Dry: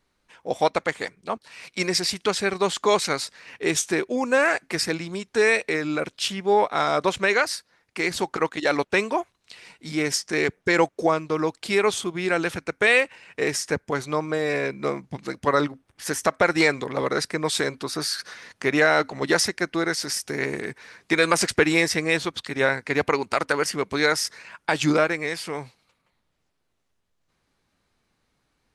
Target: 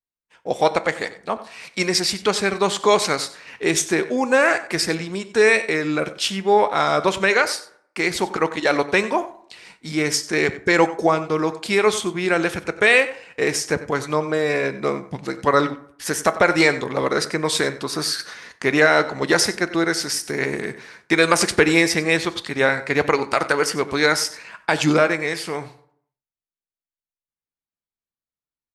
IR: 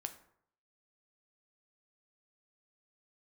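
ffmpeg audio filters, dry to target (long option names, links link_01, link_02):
-filter_complex "[0:a]asplit=2[link_01][link_02];[link_02]adelay=93.29,volume=-16dB,highshelf=frequency=4000:gain=-2.1[link_03];[link_01][link_03]amix=inputs=2:normalize=0,agate=range=-33dB:threshold=-45dB:ratio=3:detection=peak,asplit=2[link_04][link_05];[1:a]atrim=start_sample=2205[link_06];[link_05][link_06]afir=irnorm=-1:irlink=0,volume=3.5dB[link_07];[link_04][link_07]amix=inputs=2:normalize=0,volume=-3dB"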